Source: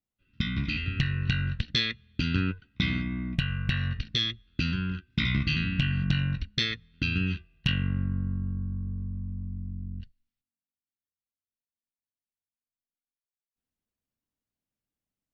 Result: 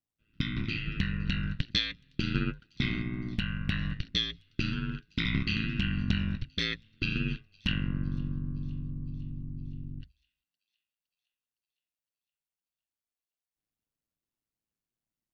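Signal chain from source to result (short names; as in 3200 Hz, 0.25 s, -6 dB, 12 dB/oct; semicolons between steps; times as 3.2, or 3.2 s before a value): ring modulator 55 Hz; thin delay 0.512 s, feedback 61%, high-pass 5500 Hz, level -18 dB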